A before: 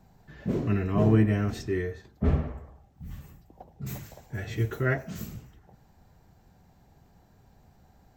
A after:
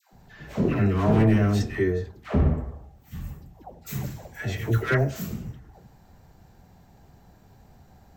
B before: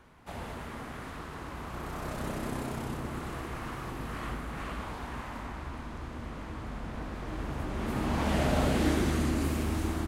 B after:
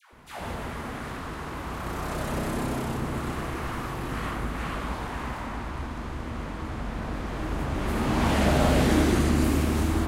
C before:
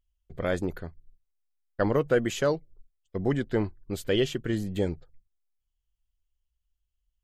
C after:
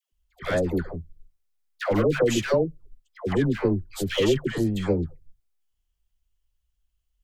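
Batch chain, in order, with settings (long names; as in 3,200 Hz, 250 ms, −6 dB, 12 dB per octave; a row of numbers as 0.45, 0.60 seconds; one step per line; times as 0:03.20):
gain into a clipping stage and back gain 20.5 dB
all-pass dispersion lows, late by 126 ms, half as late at 780 Hz
normalise the peak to −9 dBFS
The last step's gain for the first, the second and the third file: +5.5, +6.0, +5.0 decibels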